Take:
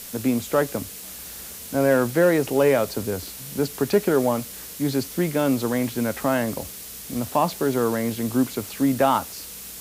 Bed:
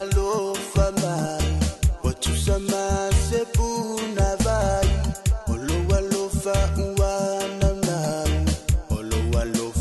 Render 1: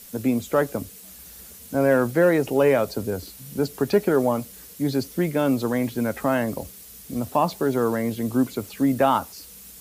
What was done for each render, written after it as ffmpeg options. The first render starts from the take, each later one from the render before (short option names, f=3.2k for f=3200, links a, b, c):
-af "afftdn=nr=9:nf=-38"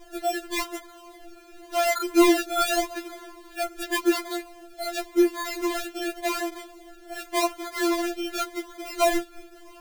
-af "acrusher=samples=31:mix=1:aa=0.000001:lfo=1:lforange=31:lforate=0.88,afftfilt=real='re*4*eq(mod(b,16),0)':imag='im*4*eq(mod(b,16),0)':win_size=2048:overlap=0.75"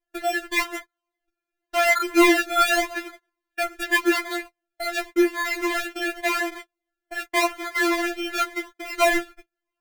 -af "agate=range=-41dB:threshold=-37dB:ratio=16:detection=peak,equalizer=f=1.9k:w=1.2:g=10.5"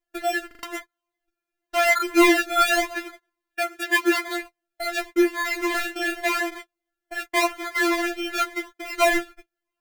-filter_complex "[0:a]asettb=1/sr,asplit=3[a][b][c];[a]atrim=end=3.614[d];[b]atrim=start=3.61:end=4.28,asetpts=PTS-STARTPTS,afade=t=in:d=0.004:c=qsin,afade=t=out:st=0.666:d=0.004:c=qsin,highpass=94[e];[c]atrim=start=4.276[f];[d][e]acrossfade=d=0.004:c1=hsin:c2=qsin[g];[g][f]acrossfade=d=0.004:c1=qsin:c2=hsin,asettb=1/sr,asplit=3[h][i][j];[h]atrim=end=5.714[k];[i]atrim=start=5.71:end=6.27,asetpts=PTS-STARTPTS,afade=t=in:d=0.004:c=qsin,afade=t=out:st=0.556:d=0.004:c=qsin,asplit=2[l][m];[m]adelay=33,volume=-4dB[n];[l][n]amix=inputs=2:normalize=0,atrim=end_sample=24696[o];[j]atrim=start=6.266[p];[k][o]acrossfade=d=0.004:c1=hsin:c2=qsin[q];[q][p]acrossfade=d=0.004:c1=qsin:c2=hsin,asplit=5[r][s][t][u][v];[r]atrim=end=0.512[w];[s]atrim=start=0.468:end=0.512[x];[t]atrim=start=0.468:end=0.512[y];[u]atrim=start=0.468:end=0.512[z];[v]atrim=start=0.628[aa];[w][x]acrossfade=d=0.004:c1=hsin:c2=hsin[ab];[ab][y]acrossfade=d=0.004:c1=hsin:c2=hsin[ac];[ac][z]acrossfade=d=0.004:c1=hsin:c2=hsin[ad];[ad][aa]acrossfade=d=0.004:c1=hsin:c2=hsin"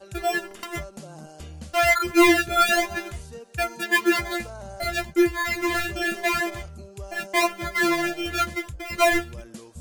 -filter_complex "[1:a]volume=-17.5dB[a];[0:a][a]amix=inputs=2:normalize=0"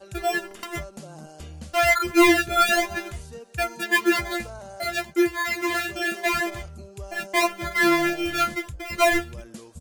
-filter_complex "[0:a]asettb=1/sr,asplit=3[a][b][c];[a]atrim=end=4.594[d];[b]atrim=start=4.59:end=6.26,asetpts=PTS-STARTPTS,afade=t=in:d=0.004:c=qsin,afade=t=out:st=1.666:d=0.004:c=qsin,highpass=f=220:p=1[e];[c]atrim=start=6.256[f];[d][e]acrossfade=d=0.004:c1=hsin:c2=qsin[g];[g][f]acrossfade=d=0.004:c1=qsin:c2=hsin,asplit=3[h][i][j];[h]afade=t=out:st=7.7:d=0.02[k];[i]asplit=2[l][m];[m]adelay=32,volume=-4.5dB[n];[l][n]amix=inputs=2:normalize=0,afade=t=in:st=7.7:d=0.02,afade=t=out:st=8.54:d=0.02[o];[j]afade=t=in:st=8.54:d=0.02[p];[k][o][p]amix=inputs=3:normalize=0"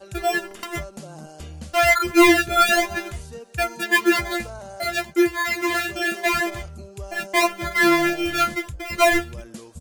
-af "volume=2.5dB"